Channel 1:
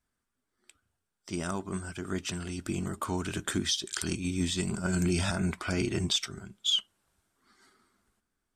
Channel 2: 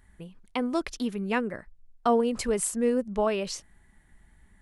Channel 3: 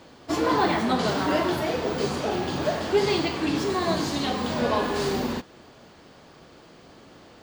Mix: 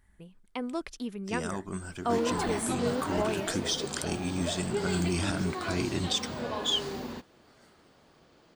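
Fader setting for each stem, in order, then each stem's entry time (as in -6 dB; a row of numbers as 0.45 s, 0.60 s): -1.5 dB, -6.0 dB, -10.5 dB; 0.00 s, 0.00 s, 1.80 s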